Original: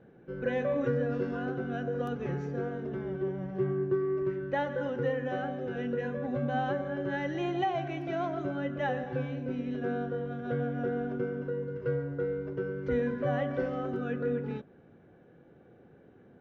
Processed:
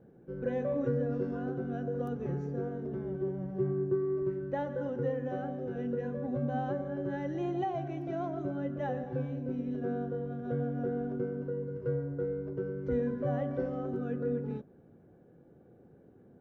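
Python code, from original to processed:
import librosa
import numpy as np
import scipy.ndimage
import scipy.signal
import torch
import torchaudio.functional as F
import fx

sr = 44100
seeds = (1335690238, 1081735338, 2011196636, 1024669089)

y = fx.peak_eq(x, sr, hz=2600.0, db=-12.5, octaves=2.6)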